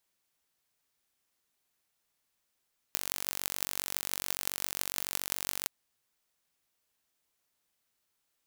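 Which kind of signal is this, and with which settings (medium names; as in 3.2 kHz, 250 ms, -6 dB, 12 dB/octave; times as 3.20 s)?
pulse train 47.2 per s, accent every 8, -2 dBFS 2.73 s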